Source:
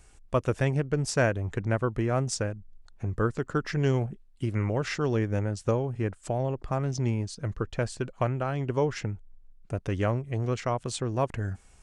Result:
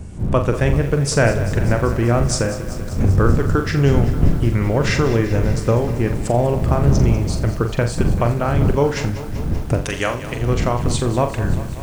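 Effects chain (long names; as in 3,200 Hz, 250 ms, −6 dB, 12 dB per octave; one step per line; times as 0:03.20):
wind on the microphone 120 Hz −30 dBFS
camcorder AGC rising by 12 dB per second
0:09.82–0:10.41: spectral tilt +4 dB per octave
flutter between parallel walls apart 7.3 metres, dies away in 0.32 s
feedback echo at a low word length 194 ms, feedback 80%, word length 7 bits, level −13.5 dB
level +7.5 dB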